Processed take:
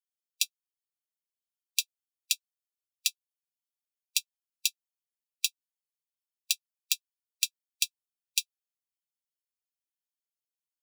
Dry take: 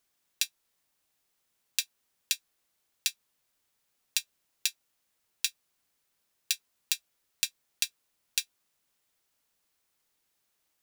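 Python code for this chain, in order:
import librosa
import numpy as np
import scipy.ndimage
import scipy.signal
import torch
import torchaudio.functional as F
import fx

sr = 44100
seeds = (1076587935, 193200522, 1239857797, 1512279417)

y = fx.bin_expand(x, sr, power=1.5)
y = fx.brickwall_highpass(y, sr, low_hz=2400.0)
y = y * 10.0 ** (2.5 / 20.0)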